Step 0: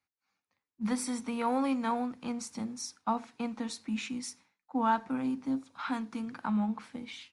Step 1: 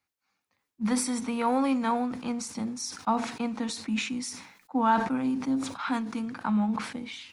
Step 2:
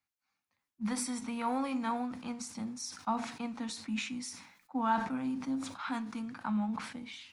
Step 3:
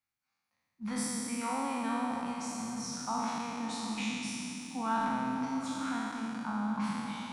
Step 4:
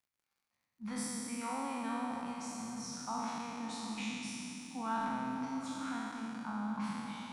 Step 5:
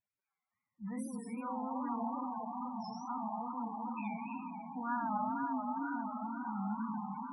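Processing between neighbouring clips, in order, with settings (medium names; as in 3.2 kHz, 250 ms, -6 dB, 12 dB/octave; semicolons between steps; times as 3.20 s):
decay stretcher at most 78 dB/s; trim +4 dB
peaking EQ 420 Hz -6.5 dB 0.71 oct; flange 0.29 Hz, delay 6.6 ms, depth 6.3 ms, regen -80%; trim -1.5 dB
spectral sustain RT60 2.76 s; repeats whose band climbs or falls 141 ms, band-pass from 150 Hz, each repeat 0.7 oct, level -0.5 dB; trim -5 dB
crackle 79 per s -61 dBFS; trim -4.5 dB
band-passed feedback delay 241 ms, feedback 82%, band-pass 910 Hz, level -3 dB; loudest bins only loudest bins 16; wow and flutter 120 cents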